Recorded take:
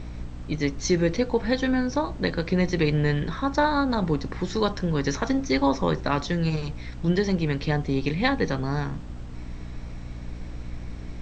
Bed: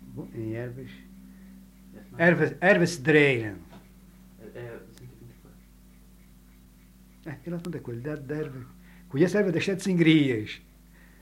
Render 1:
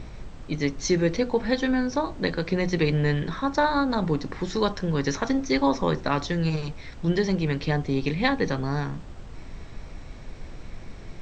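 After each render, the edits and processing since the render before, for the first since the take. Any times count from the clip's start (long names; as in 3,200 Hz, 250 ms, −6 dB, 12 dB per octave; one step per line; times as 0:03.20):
hum removal 60 Hz, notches 5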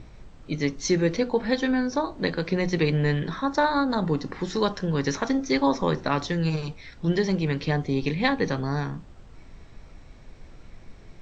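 noise reduction from a noise print 7 dB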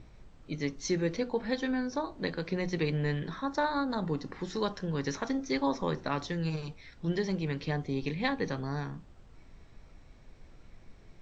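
level −7.5 dB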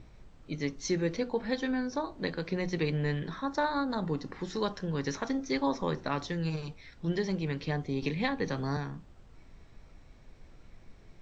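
0:08.02–0:08.77: multiband upward and downward compressor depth 70%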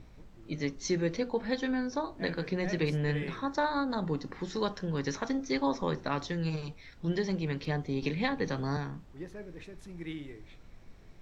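mix in bed −21 dB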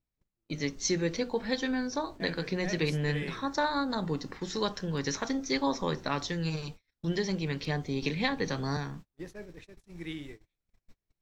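noise gate −44 dBFS, range −36 dB
high-shelf EQ 3,300 Hz +9 dB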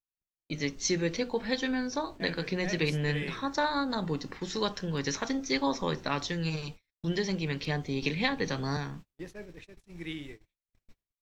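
noise gate with hold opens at −54 dBFS
parametric band 2,700 Hz +3.5 dB 0.77 octaves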